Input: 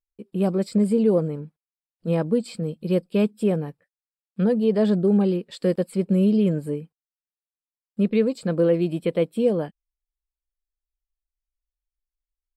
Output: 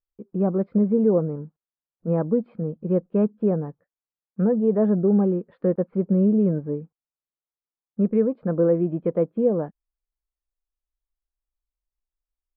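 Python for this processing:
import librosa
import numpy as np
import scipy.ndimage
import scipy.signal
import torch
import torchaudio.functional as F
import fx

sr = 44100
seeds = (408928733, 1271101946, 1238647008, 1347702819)

y = scipy.signal.sosfilt(scipy.signal.butter(4, 1400.0, 'lowpass', fs=sr, output='sos'), x)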